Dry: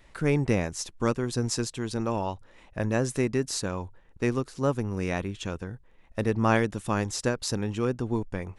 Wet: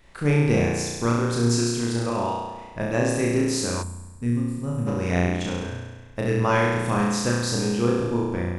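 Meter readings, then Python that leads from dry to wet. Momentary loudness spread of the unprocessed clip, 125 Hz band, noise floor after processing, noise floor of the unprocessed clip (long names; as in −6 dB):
10 LU, +5.5 dB, −43 dBFS, −56 dBFS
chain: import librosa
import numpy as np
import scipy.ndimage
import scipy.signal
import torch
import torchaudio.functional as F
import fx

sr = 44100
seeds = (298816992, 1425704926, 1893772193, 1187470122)

y = fx.room_flutter(x, sr, wall_m=5.8, rt60_s=1.3)
y = fx.spec_box(y, sr, start_s=3.82, length_s=1.05, low_hz=270.0, high_hz=7000.0, gain_db=-14)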